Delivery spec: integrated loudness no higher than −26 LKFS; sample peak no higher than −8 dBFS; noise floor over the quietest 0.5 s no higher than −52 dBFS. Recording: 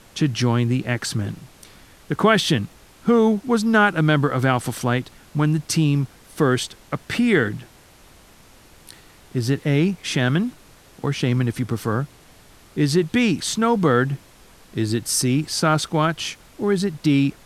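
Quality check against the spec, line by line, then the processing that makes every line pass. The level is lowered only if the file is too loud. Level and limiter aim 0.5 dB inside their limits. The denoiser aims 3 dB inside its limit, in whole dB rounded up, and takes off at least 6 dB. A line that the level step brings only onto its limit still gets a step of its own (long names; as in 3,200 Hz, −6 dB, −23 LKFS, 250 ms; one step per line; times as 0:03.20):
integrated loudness −21.0 LKFS: out of spec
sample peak −3.5 dBFS: out of spec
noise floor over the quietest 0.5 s −49 dBFS: out of spec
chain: level −5.5 dB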